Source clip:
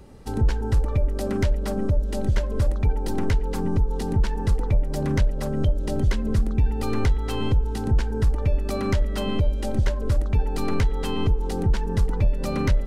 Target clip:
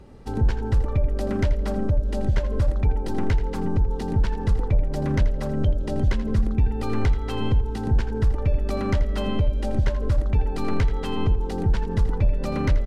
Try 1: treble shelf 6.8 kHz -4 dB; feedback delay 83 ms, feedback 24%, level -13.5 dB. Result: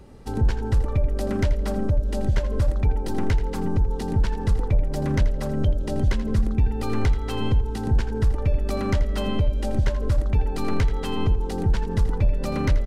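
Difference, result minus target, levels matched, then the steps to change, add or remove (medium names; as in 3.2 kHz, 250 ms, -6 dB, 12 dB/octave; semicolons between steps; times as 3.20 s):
8 kHz band +4.0 dB
change: treble shelf 6.8 kHz -12 dB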